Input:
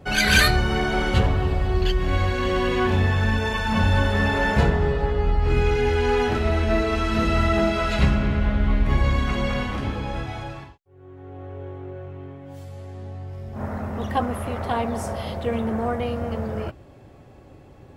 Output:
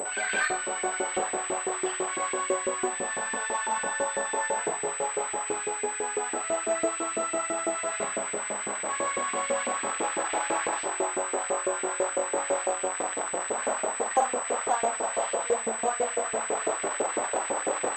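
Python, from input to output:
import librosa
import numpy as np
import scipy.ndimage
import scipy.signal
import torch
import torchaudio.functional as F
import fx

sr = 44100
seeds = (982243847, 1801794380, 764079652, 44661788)

y = fx.delta_mod(x, sr, bps=64000, step_db=-20.5)
y = scipy.signal.sosfilt(scipy.signal.butter(2, 240.0, 'highpass', fs=sr, output='sos'), y)
y = fx.tilt_eq(y, sr, slope=-3.5)
y = fx.rider(y, sr, range_db=10, speed_s=0.5)
y = fx.room_flutter(y, sr, wall_m=8.4, rt60_s=0.5)
y = fx.filter_lfo_highpass(y, sr, shape='saw_up', hz=6.0, low_hz=410.0, high_hz=2400.0, q=1.7)
y = fx.pwm(y, sr, carrier_hz=8000.0)
y = y * librosa.db_to_amplitude(-6.0)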